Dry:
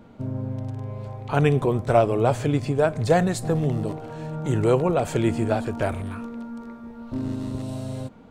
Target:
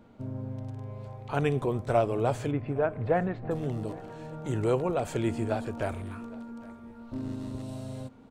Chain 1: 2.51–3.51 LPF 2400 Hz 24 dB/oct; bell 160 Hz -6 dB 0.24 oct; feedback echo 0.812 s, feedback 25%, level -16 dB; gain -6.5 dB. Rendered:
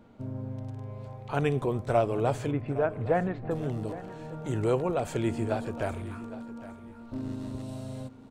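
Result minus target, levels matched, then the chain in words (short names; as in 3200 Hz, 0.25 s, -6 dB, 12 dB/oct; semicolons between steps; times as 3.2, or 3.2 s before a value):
echo-to-direct +6.5 dB
2.51–3.51 LPF 2400 Hz 24 dB/oct; bell 160 Hz -6 dB 0.24 oct; feedback echo 0.812 s, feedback 25%, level -22.5 dB; gain -6.5 dB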